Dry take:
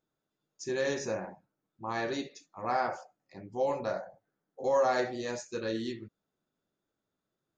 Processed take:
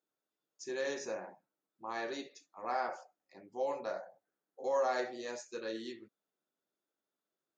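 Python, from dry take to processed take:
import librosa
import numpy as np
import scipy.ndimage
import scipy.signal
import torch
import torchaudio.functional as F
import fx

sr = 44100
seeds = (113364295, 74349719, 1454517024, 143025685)

y = scipy.signal.sosfilt(scipy.signal.butter(2, 300.0, 'highpass', fs=sr, output='sos'), x)
y = F.gain(torch.from_numpy(y), -5.0).numpy()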